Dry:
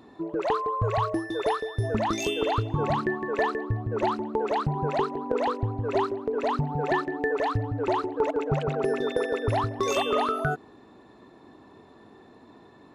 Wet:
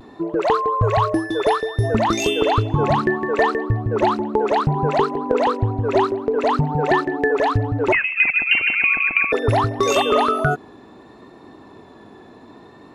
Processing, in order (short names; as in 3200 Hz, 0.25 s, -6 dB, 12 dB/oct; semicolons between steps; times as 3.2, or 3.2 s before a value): 7.92–9.32 inverted band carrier 2900 Hz; vibrato 0.64 Hz 27 cents; gain +8 dB